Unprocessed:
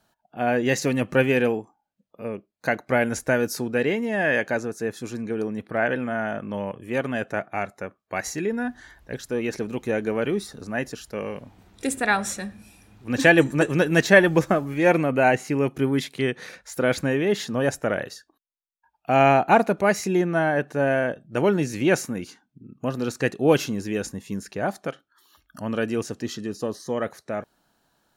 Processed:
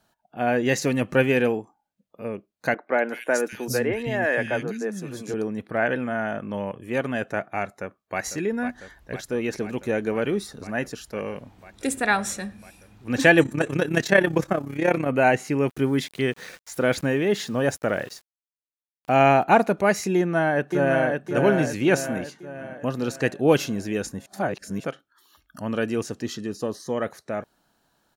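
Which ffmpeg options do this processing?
-filter_complex "[0:a]asettb=1/sr,asplit=3[s0][s1][s2];[s0]atrim=end=2.744[s3];[s1]atrim=start=2.74:end=5.34,asetpts=PTS-STARTPTS,afade=t=in:d=0.004:c=qsin,afade=t=out:st=2.596:d=0.004:c=qsin,acrossover=split=250|2600[s4][s5][s6];[s6]adelay=200[s7];[s4]adelay=780[s8];[s8][s5][s7]amix=inputs=3:normalize=0,atrim=end_sample=114660[s9];[s2]atrim=start=5.336[s10];[s3][s9]acrossfade=d=0.004:c1=hsin:c2=qsin[s11];[s11][s10]acrossfade=d=0.004:c1=qsin:c2=hsin,asplit=2[s12][s13];[s13]afade=t=in:st=7.64:d=0.01,afade=t=out:st=8.21:d=0.01,aecho=0:1:500|1000|1500|2000|2500|3000|3500|4000|4500|5000|5500|6000:0.281838|0.239563|0.203628|0.173084|0.147121|0.125053|0.106295|0.0903509|0.0767983|0.0652785|0.0554867|0.0471637[s14];[s12][s14]amix=inputs=2:normalize=0,asettb=1/sr,asplit=3[s15][s16][s17];[s15]atrim=end=13.434[s18];[s16]atrim=start=13.43:end=15.08,asetpts=PTS-STARTPTS,afade=t=in:d=0.004:c=qsin,afade=t=out:st=1.646:d=0.004:c=qsin,tremolo=f=33:d=0.75[s19];[s17]atrim=start=15.076[s20];[s18][s19]acrossfade=d=0.004:c1=hsin:c2=qsin[s21];[s21][s20]acrossfade=d=0.004:c1=qsin:c2=hsin,asplit=3[s22][s23][s24];[s22]afade=t=out:st=15.68:d=0.02[s25];[s23]aeval=exprs='val(0)*gte(abs(val(0)),0.00631)':c=same,afade=t=in:st=15.68:d=0.02,afade=t=out:st=19.42:d=0.02[s26];[s24]afade=t=in:st=19.42:d=0.02[s27];[s25][s26][s27]amix=inputs=3:normalize=0,asplit=2[s28][s29];[s29]afade=t=in:st=20.16:d=0.01,afade=t=out:st=21.26:d=0.01,aecho=0:1:560|1120|1680|2240|2800|3360:0.630957|0.315479|0.157739|0.0788697|0.0394348|0.0197174[s30];[s28][s30]amix=inputs=2:normalize=0,asplit=3[s31][s32][s33];[s31]atrim=end=24.262[s34];[s32]atrim=start=24.258:end=24.842,asetpts=PTS-STARTPTS,areverse[s35];[s33]atrim=start=24.838[s36];[s34][s35]acrossfade=d=0.004:c1=hsin:c2=hsin[s37];[s37][s36]acrossfade=d=0.004:c1=hsin:c2=hsin"

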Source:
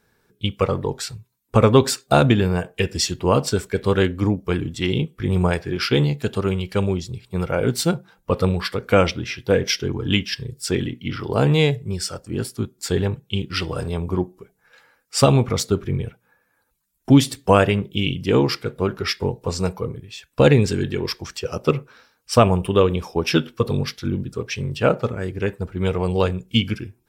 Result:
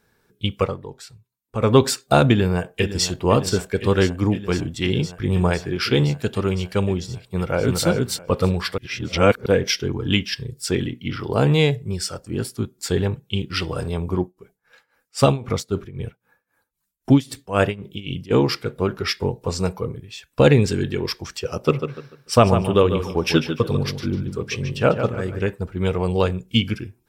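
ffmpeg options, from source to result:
-filter_complex "[0:a]asplit=2[s0][s1];[s1]afade=t=in:st=2.3:d=0.01,afade=t=out:st=3.07:d=0.01,aecho=0:1:510|1020|1530|2040|2550|3060|3570|4080|4590|5100|5610|6120:0.237137|0.201567|0.171332|0.145632|0.123787|0.105219|0.0894362|0.0760208|0.0646177|0.054925|0.0466863|0.0396833[s2];[s0][s2]amix=inputs=2:normalize=0,asplit=2[s3][s4];[s4]afade=t=in:st=7.21:d=0.01,afade=t=out:st=7.85:d=0.01,aecho=0:1:330|660:0.794328|0.0794328[s5];[s3][s5]amix=inputs=2:normalize=0,asplit=3[s6][s7][s8];[s6]afade=t=out:st=14.17:d=0.02[s9];[s7]tremolo=f=3.8:d=0.88,afade=t=in:st=14.17:d=0.02,afade=t=out:st=18.3:d=0.02[s10];[s8]afade=t=in:st=18.3:d=0.02[s11];[s9][s10][s11]amix=inputs=3:normalize=0,asettb=1/sr,asplit=3[s12][s13][s14];[s12]atrim=end=21.594[s15];[s13]atrim=start=21.59:end=25.49,asetpts=PTS-STARTPTS,afade=t=in:d=0.004:c=qsin,afade=t=out:st=3.896:d=0.004:c=qsin,asplit=2[s16][s17];[s17]adelay=147,lowpass=f=4500:p=1,volume=0.376,asplit=2[s18][s19];[s19]adelay=147,lowpass=f=4500:p=1,volume=0.31,asplit=2[s20][s21];[s21]adelay=147,lowpass=f=4500:p=1,volume=0.31,asplit=2[s22][s23];[s23]adelay=147,lowpass=f=4500:p=1,volume=0.31[s24];[s16][s18][s20][s22][s24]amix=inputs=5:normalize=0,atrim=end_sample=171990[s25];[s14]atrim=start=25.486[s26];[s15][s25]acrossfade=d=0.004:c1=hsin:c2=qsin[s27];[s27][s26]acrossfade=d=0.004:c1=qsin:c2=hsin,asplit=5[s28][s29][s30][s31][s32];[s28]atrim=end=0.77,asetpts=PTS-STARTPTS,afade=t=out:st=0.61:d=0.16:silence=0.266073[s33];[s29]atrim=start=0.77:end=1.57,asetpts=PTS-STARTPTS,volume=0.266[s34];[s30]atrim=start=1.57:end=8.782,asetpts=PTS-STARTPTS,afade=t=in:d=0.16:silence=0.266073[s35];[s31]atrim=start=8.778:end=9.462,asetpts=PTS-STARTPTS,areverse[s36];[s32]atrim=start=9.458[s37];[s33][s34][s35]concat=n=3:v=0:a=1[s38];[s38][s36]acrossfade=d=0.004:c1=hsin:c2=hsin[s39];[s39][s37]acrossfade=d=0.004:c1=hsin:c2=hsin"

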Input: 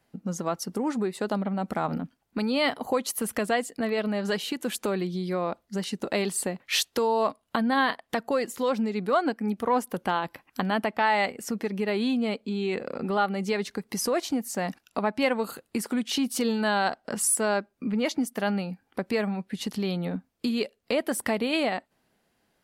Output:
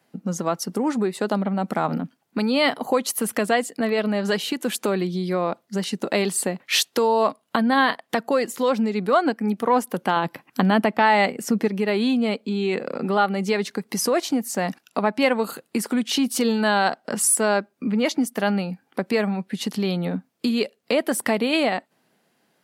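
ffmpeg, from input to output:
-filter_complex "[0:a]asettb=1/sr,asplit=3[s0][s1][s2];[s0]atrim=end=10.164[s3];[s1]atrim=start=10.16:end=11.68,asetpts=PTS-STARTPTS,afade=t=in:d=0.004:c=qsin,afade=t=out:st=1.516:d=0.004:c=qsin,lowshelf=f=330:g=7[s4];[s2]atrim=start=11.676[s5];[s3][s4]acrossfade=d=0.004:c1=hsin:c2=qsin[s6];[s6][s5]acrossfade=d=0.004:c1=qsin:c2=hsin,highpass=f=130:w=0.5412,highpass=f=130:w=1.3066,volume=1.78"

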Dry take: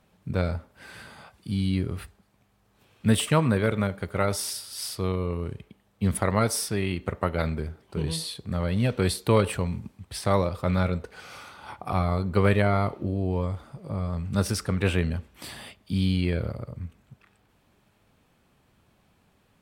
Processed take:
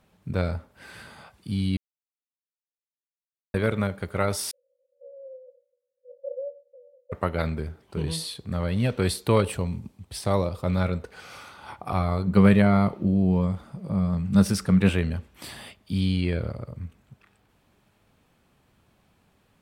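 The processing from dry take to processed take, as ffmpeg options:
-filter_complex "[0:a]asettb=1/sr,asplit=3[s0][s1][s2];[s0]atrim=end=4.514[s3];[s1]atrim=start=4.51:end=7.12,asetpts=PTS-STARTPTS,afade=t=in:d=0.004:c=qsin,afade=t=out:st=2.606:d=0.004:c=qsin,asuperpass=centerf=530:order=20:qfactor=6[s4];[s2]atrim=start=7.116[s5];[s3][s4]acrossfade=d=0.004:c1=hsin:c2=qsin[s6];[s6][s5]acrossfade=d=0.004:c1=qsin:c2=hsin,asettb=1/sr,asplit=3[s7][s8][s9];[s7]atrim=end=9.424[s10];[s8]atrim=start=9.42:end=10.81,asetpts=PTS-STARTPTS,afade=t=in:d=0.004:c=qsin,afade=t=out:st=1.386:d=0.004:c=qsin,equalizer=f=1600:t=o:w=1.3:g=-5.5[s11];[s9]atrim=start=10.806[s12];[s10][s11]acrossfade=d=0.004:c1=hsin:c2=qsin[s13];[s13][s12]acrossfade=d=0.004:c1=qsin:c2=hsin,asettb=1/sr,asplit=3[s14][s15][s16];[s14]atrim=end=12.274[s17];[s15]atrim=start=12.27:end=14.89,asetpts=PTS-STARTPTS,afade=t=in:d=0.004:c=qsin,afade=t=out:st=2.616:d=0.004:c=qsin,equalizer=f=190:w=3.9:g=12[s18];[s16]atrim=start=14.886[s19];[s17][s18]acrossfade=d=0.004:c1=hsin:c2=qsin[s20];[s20][s19]acrossfade=d=0.004:c1=qsin:c2=hsin,asettb=1/sr,asplit=3[s21][s22][s23];[s21]atrim=end=16.004[s24];[s22]atrim=start=16:end=16.65,asetpts=PTS-STARTPTS,afade=t=in:d=0.004:c=qsin,afade=t=out:st=0.646:d=0.004:c=qsin,lowpass=11000[s25];[s23]atrim=start=16.646[s26];[s24][s25]acrossfade=d=0.004:c1=hsin:c2=qsin[s27];[s27][s26]acrossfade=d=0.004:c1=qsin:c2=hsin,asplit=3[s28][s29][s30];[s28]atrim=end=1.77,asetpts=PTS-STARTPTS,afade=t=out:st=1.766:d=0.004:c=hsin[s31];[s29]atrim=start=1.77:end=3.54,asetpts=PTS-STARTPTS,volume=0[s32];[s30]atrim=start=3.54,asetpts=PTS-STARTPTS,afade=t=in:d=0.004:c=hsin[s33];[s31][s32][s33]concat=n=3:v=0:a=1"

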